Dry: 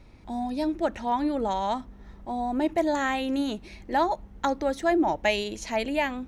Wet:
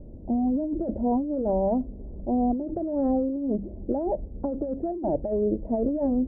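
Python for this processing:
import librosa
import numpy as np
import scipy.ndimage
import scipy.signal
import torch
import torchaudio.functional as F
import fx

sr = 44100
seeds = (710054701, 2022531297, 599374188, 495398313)

y = fx.wow_flutter(x, sr, seeds[0], rate_hz=2.1, depth_cents=26.0)
y = scipy.signal.sosfilt(scipy.signal.cheby1(4, 1.0, 600.0, 'lowpass', fs=sr, output='sos'), y)
y = fx.over_compress(y, sr, threshold_db=-33.0, ratio=-1.0)
y = fx.hum_notches(y, sr, base_hz=50, count=4)
y = y * 10.0 ** (7.5 / 20.0)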